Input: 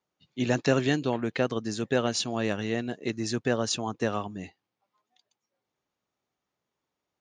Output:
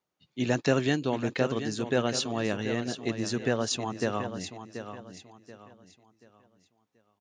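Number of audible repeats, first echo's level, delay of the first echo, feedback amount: 3, -10.0 dB, 732 ms, 33%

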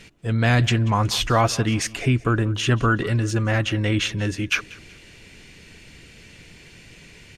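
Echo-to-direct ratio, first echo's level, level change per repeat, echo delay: -20.5 dB, -21.0 dB, -8.5 dB, 186 ms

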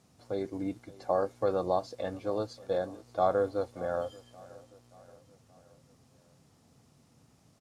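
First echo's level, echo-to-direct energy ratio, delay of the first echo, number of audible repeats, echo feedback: -21.0 dB, -19.5 dB, 578 ms, 3, 54%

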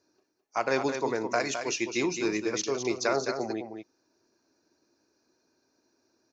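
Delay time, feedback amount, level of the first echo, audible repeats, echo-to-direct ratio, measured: 212 ms, no regular repeats, -7.5 dB, 1, -7.5 dB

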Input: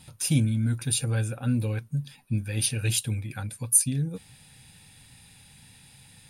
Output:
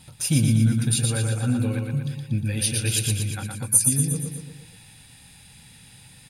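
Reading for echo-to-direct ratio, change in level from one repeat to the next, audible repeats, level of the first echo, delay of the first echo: -2.5 dB, -5.0 dB, 5, -4.0 dB, 118 ms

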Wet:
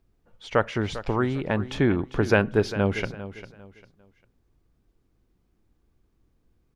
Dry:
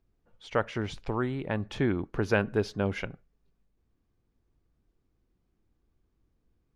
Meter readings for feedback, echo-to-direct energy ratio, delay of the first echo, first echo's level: 29%, -13.5 dB, 399 ms, -14.0 dB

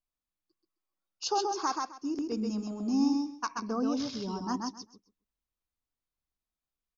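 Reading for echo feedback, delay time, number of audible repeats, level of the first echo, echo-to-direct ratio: 18%, 131 ms, 3, -3.5 dB, -3.5 dB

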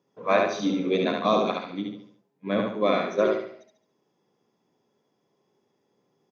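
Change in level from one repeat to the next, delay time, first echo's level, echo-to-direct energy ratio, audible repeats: -7.5 dB, 71 ms, -3.0 dB, -2.0 dB, 5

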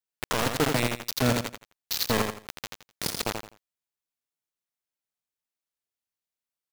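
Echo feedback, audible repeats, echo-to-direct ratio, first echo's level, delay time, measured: 26%, 3, -5.0 dB, -5.5 dB, 84 ms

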